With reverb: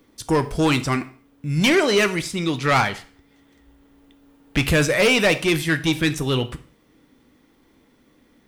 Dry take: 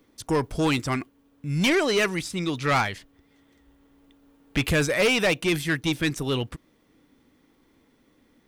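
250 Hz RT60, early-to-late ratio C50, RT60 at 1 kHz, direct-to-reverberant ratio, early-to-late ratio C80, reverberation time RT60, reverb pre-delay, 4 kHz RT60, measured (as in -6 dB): 0.45 s, 15.0 dB, 0.45 s, 10.0 dB, 20.0 dB, 0.45 s, 5 ms, 0.40 s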